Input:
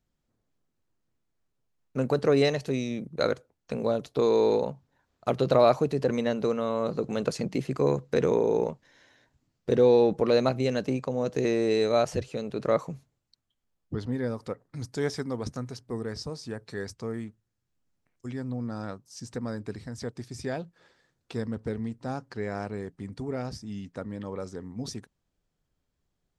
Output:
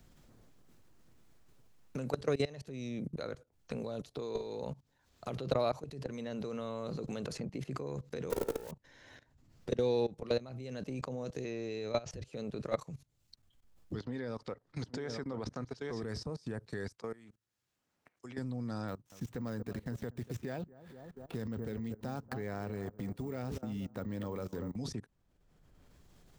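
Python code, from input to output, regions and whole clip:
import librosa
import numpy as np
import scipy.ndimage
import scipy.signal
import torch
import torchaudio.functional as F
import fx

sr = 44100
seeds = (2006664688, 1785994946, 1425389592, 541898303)

y = fx.chain(x, sr, fx.crossing_spikes(level_db=-19.5),
    fx.low_shelf(hz=410.0, db=-11.0),
    fx.leveller(passes=3), at=(8.3, 8.71))
y = fx.chain(y, sr, fx.peak_eq(hz=2500.0, db=4.5, octaves=0.26),
    fx.resample_bad(factor=3, down='none', up='filtered'), at=(11.44, 12.11))
y = fx.chain(y, sr, fx.lowpass(hz=4900.0, slope=12),
    fx.low_shelf(hz=200.0, db=-11.0),
    fx.echo_single(ms=832, db=-9.5), at=(13.99, 16.03))
y = fx.chain(y, sr, fx.highpass(hz=860.0, slope=6),
    fx.high_shelf(hz=2600.0, db=-11.0), at=(16.89, 18.38))
y = fx.chain(y, sr, fx.median_filter(points=9),
    fx.echo_bbd(ms=236, stages=2048, feedback_pct=33, wet_db=-12.5),
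    fx.resample_bad(factor=2, down='none', up='hold'), at=(18.88, 24.76))
y = fx.level_steps(y, sr, step_db=21)
y = fx.low_shelf(y, sr, hz=110.0, db=5.0)
y = fx.band_squash(y, sr, depth_pct=70)
y = y * 10.0 ** (1.5 / 20.0)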